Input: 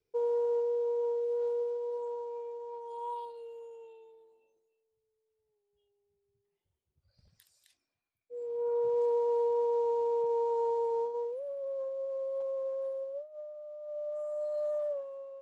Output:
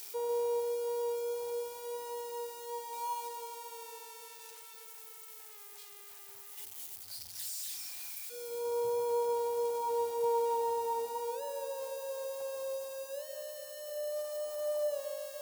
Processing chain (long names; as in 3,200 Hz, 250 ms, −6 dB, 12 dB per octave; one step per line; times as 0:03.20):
spike at every zero crossing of −33.5 dBFS
thirty-one-band graphic EQ 100 Hz +9 dB, 160 Hz −5 dB, 250 Hz +6 dB, 500 Hz −6 dB, 800 Hz +8 dB
delay that swaps between a low-pass and a high-pass 147 ms, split 930 Hz, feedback 78%, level −8 dB
level −1 dB